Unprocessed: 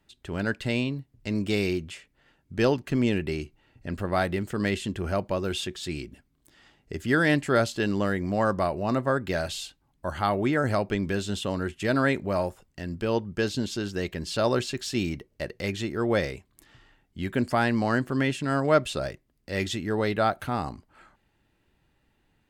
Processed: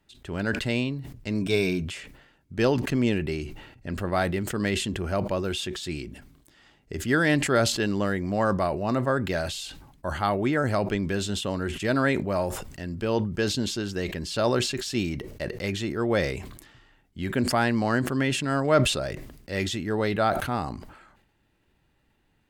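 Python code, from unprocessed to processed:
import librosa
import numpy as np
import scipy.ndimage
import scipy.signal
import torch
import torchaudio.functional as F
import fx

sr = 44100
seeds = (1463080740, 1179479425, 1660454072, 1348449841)

y = fx.ripple_eq(x, sr, per_octave=1.6, db=10, at=(1.41, 1.85))
y = fx.sustainer(y, sr, db_per_s=63.0)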